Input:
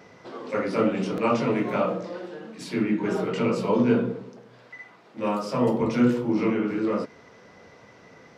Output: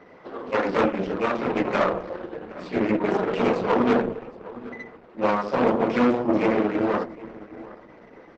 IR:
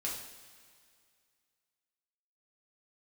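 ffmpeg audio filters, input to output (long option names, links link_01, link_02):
-filter_complex "[0:a]asettb=1/sr,asplit=3[link_01][link_02][link_03];[link_01]atrim=end=0.854[link_04];[link_02]atrim=start=0.85:end=1.56,asetpts=PTS-STARTPTS,afade=type=in:duration=0.004:curve=qsin,afade=type=out:start_time=0.706:duration=0.004:curve=qsin,acompressor=threshold=-24dB:ratio=3[link_05];[link_03]atrim=start=1.556[link_06];[link_04][link_05]acrossfade=duration=0.004:curve1=hsin:curve2=qsin[link_07];[link_07][link_06]acrossfade=duration=0.004:curve1=qsin:curve2=hsin,asettb=1/sr,asplit=3[link_08][link_09][link_10];[link_08]atrim=end=3.354[link_11];[link_09]atrim=start=3.35:end=3.92,asetpts=PTS-STARTPTS,afade=type=in:duration=0.004:curve=qsin,afade=type=out:start_time=0.566:duration=0.004:curve=qsin,bandreject=frequency=5400:width=23[link_12];[link_10]atrim=start=3.916[link_13];[link_11][link_12]acrossfade=duration=0.004:curve1=hsin:curve2=qsin[link_14];[link_14][link_13]acrossfade=duration=0.004:curve1=qsin:curve2=hsin,asettb=1/sr,asplit=3[link_15][link_16][link_17];[link_15]atrim=end=4.774[link_18];[link_16]atrim=start=4.77:end=5.62,asetpts=PTS-STARTPTS,afade=type=in:duration=0.004:curve=qsin,afade=type=out:start_time=0.846:duration=0.004:curve=qsin,aecho=1:1:5.5:0.31,atrim=end_sample=37485[link_19];[link_17]atrim=start=5.616[link_20];[link_18][link_19]acrossfade=duration=0.004:curve1=hsin:curve2=qsin[link_21];[link_21][link_20]acrossfade=duration=0.004:curve1=qsin:curve2=hsin,aeval=exprs='0.355*(cos(1*acos(clip(val(0)/0.355,-1,1)))-cos(1*PI/2))+0.00501*(cos(2*acos(clip(val(0)/0.355,-1,1)))-cos(2*PI/2))+0.0158*(cos(3*acos(clip(val(0)/0.355,-1,1)))-cos(3*PI/2))+0.0501*(cos(5*acos(clip(val(0)/0.355,-1,1)))-cos(5*PI/2))+0.112*(cos(6*acos(clip(val(0)/0.355,-1,1)))-cos(6*PI/2))':channel_layout=same,adynamicsmooth=sensitivity=1.5:basefreq=2400,highpass=210,lowpass=7500,asplit=2[link_22][link_23];[link_23]adelay=763,lowpass=frequency=2400:poles=1,volume=-17dB,asplit=2[link_24][link_25];[link_25]adelay=763,lowpass=frequency=2400:poles=1,volume=0.24[link_26];[link_22][link_24][link_26]amix=inputs=3:normalize=0" -ar 48000 -c:a libopus -b:a 10k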